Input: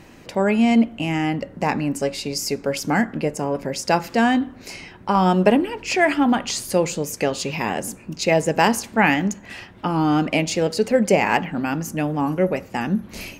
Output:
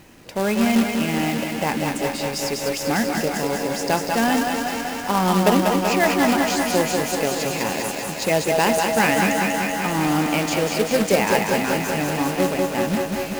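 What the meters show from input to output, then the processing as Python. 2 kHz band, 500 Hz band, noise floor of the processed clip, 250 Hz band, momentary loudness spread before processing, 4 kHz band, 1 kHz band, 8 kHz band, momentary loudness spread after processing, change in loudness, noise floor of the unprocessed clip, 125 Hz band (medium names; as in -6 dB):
+1.0 dB, +0.5 dB, -29 dBFS, -1.0 dB, 8 LU, +3.0 dB, +0.5 dB, +3.0 dB, 6 LU, 0.0 dB, -45 dBFS, -1.0 dB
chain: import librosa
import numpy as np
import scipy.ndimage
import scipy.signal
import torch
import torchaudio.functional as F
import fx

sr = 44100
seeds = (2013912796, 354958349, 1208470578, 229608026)

y = fx.echo_thinned(x, sr, ms=201, feedback_pct=79, hz=310.0, wet_db=-6)
y = fx.quant_companded(y, sr, bits=4)
y = fx.echo_crushed(y, sr, ms=190, feedback_pct=80, bits=6, wet_db=-6.0)
y = F.gain(torch.from_numpy(y), -3.0).numpy()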